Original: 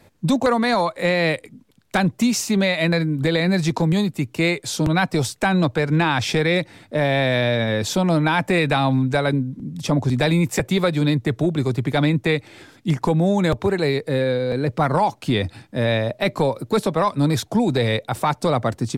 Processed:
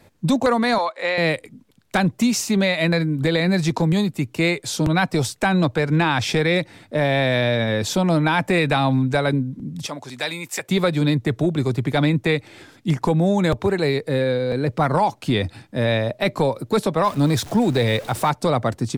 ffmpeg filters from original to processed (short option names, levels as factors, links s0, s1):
-filter_complex "[0:a]asettb=1/sr,asplit=3[s0][s1][s2];[s0]atrim=end=0.784[s3];[s1]atrim=start=0.78:end=1.18,asetpts=PTS-STARTPTS,afade=t=in:d=0.004:c=qsin,afade=t=out:st=0.396:d=0.004:c=qsin,highpass=550,lowpass=5400[s4];[s2]atrim=start=1.176[s5];[s3][s4]acrossfade=d=0.004:c1=hsin:c2=qsin[s6];[s6][s5]acrossfade=d=0.004:c1=qsin:c2=hsin,asettb=1/sr,asplit=3[s7][s8][s9];[s7]atrim=end=9.864[s10];[s8]atrim=start=9.86:end=10.69,asetpts=PTS-STARTPTS,afade=t=in:d=0.004:c=qsin,afade=t=out:st=0.826:d=0.004:c=qsin,highpass=f=1500:p=1[s11];[s9]atrim=start=10.686[s12];[s10][s11]acrossfade=d=0.004:c1=hsin:c2=qsin[s13];[s13][s12]acrossfade=d=0.004:c1=qsin:c2=hsin,asettb=1/sr,asplit=3[s14][s15][s16];[s14]atrim=end=17.044[s17];[s15]atrim=start=17.04:end=18.3,asetpts=PTS-STARTPTS,afade=t=in:d=0.004:c=qsin,afade=t=out:st=1.256:d=0.004:c=qsin,aeval=exprs='val(0)+0.5*0.0237*sgn(val(0))':c=same[s18];[s16]atrim=start=18.296[s19];[s17][s18]acrossfade=d=0.004:c1=hsin:c2=qsin[s20];[s20][s19]acrossfade=d=0.004:c1=qsin:c2=hsin"